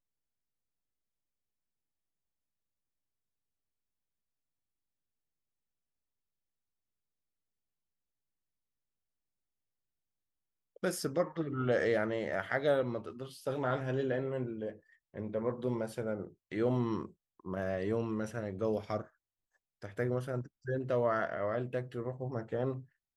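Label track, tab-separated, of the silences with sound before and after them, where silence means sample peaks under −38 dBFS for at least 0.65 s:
19.020000	19.840000	silence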